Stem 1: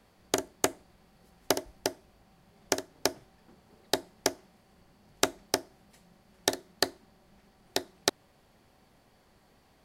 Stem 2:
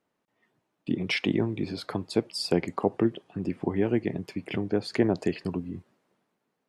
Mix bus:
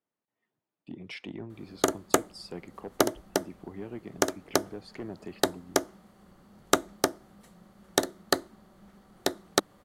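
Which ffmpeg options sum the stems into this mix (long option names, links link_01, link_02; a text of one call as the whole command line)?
ffmpeg -i stem1.wav -i stem2.wav -filter_complex "[0:a]equalizer=frequency=200:width_type=o:width=0.33:gain=8,equalizer=frequency=315:width_type=o:width=0.33:gain=4,equalizer=frequency=500:width_type=o:width=0.33:gain=4,equalizer=frequency=1250:width_type=o:width=0.33:gain=8,equalizer=frequency=2500:width_type=o:width=0.33:gain=-6,equalizer=frequency=5000:width_type=o:width=0.33:gain=-6,adelay=1500,volume=2dB[link_01];[1:a]asoftclip=type=tanh:threshold=-16.5dB,volume=-13dB[link_02];[link_01][link_02]amix=inputs=2:normalize=0" out.wav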